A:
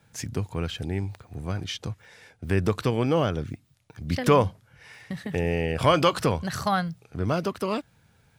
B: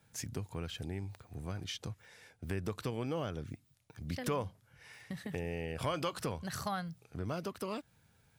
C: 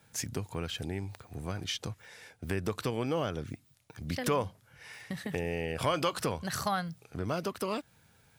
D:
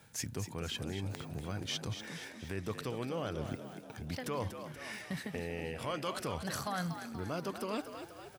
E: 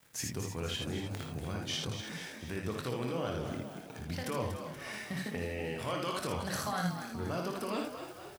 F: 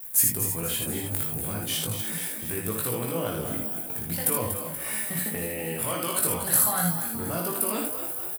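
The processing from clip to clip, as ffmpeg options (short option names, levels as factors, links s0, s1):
-af "highshelf=f=7600:g=7,acompressor=threshold=0.0316:ratio=2,volume=0.422"
-af "lowshelf=f=200:g=-5,volume=2.11"
-filter_complex "[0:a]areverse,acompressor=threshold=0.0112:ratio=6,areverse,asplit=7[s0][s1][s2][s3][s4][s5][s6];[s1]adelay=239,afreqshift=58,volume=0.355[s7];[s2]adelay=478,afreqshift=116,volume=0.191[s8];[s3]adelay=717,afreqshift=174,volume=0.104[s9];[s4]adelay=956,afreqshift=232,volume=0.0556[s10];[s5]adelay=1195,afreqshift=290,volume=0.0302[s11];[s6]adelay=1434,afreqshift=348,volume=0.0162[s12];[s0][s7][s8][s9][s10][s11][s12]amix=inputs=7:normalize=0,volume=1.58"
-af "aeval=exprs='val(0)*gte(abs(val(0)),0.00158)':c=same,aecho=1:1:24|57|79:0.335|0.531|0.562"
-filter_complex "[0:a]aexciter=amount=12.6:drive=5.9:freq=8500,asplit=2[s0][s1];[s1]adelay=18,volume=0.596[s2];[s0][s2]amix=inputs=2:normalize=0,volume=1.5"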